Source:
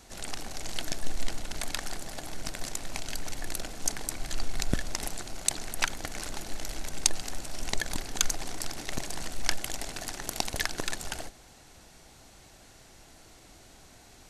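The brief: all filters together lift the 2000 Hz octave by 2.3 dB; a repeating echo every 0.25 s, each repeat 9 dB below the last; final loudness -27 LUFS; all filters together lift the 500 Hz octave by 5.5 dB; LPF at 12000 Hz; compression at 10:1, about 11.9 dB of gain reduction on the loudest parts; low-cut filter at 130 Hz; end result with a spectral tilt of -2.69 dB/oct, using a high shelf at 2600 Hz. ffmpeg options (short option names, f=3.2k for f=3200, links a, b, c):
-af "highpass=130,lowpass=12k,equalizer=f=500:t=o:g=7.5,equalizer=f=2k:t=o:g=5.5,highshelf=f=2.6k:g=-7.5,acompressor=threshold=-37dB:ratio=10,aecho=1:1:250|500|750|1000:0.355|0.124|0.0435|0.0152,volume=15dB"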